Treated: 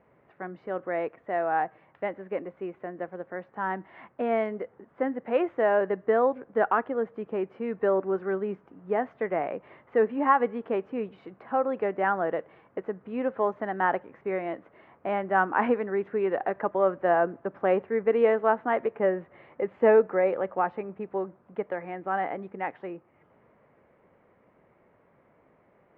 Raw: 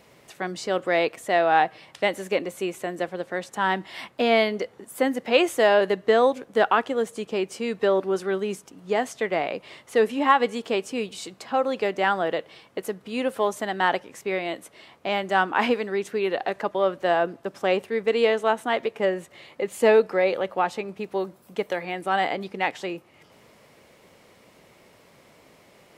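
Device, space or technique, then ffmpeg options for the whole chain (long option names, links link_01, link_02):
action camera in a waterproof case: -af "lowpass=frequency=1800:width=0.5412,lowpass=frequency=1800:width=1.3066,dynaudnorm=framelen=370:gausssize=31:maxgain=11.5dB,volume=-7dB" -ar 48000 -c:a aac -b:a 128k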